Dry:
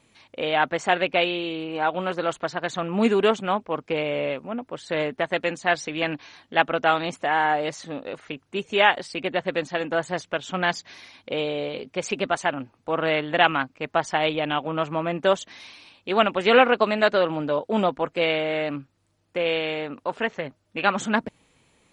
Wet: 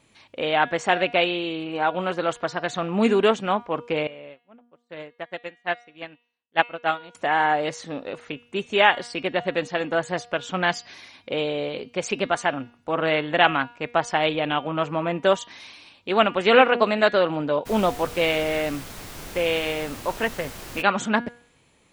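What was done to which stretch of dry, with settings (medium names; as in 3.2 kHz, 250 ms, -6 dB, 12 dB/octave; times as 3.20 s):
4.07–7.15 s: upward expansion 2.5:1, over -42 dBFS
17.65–20.81 s: added noise pink -39 dBFS
whole clip: de-hum 239 Hz, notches 24; trim +1 dB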